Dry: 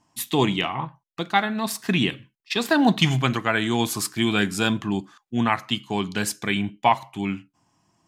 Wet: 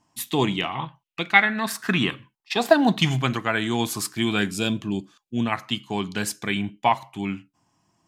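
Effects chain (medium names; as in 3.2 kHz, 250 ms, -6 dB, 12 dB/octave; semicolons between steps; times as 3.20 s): 0.71–2.72 s: peaking EQ 3.8 kHz -> 670 Hz +14 dB 0.67 oct; 4.51–5.52 s: time-frequency box 680–2200 Hz -8 dB; trim -1.5 dB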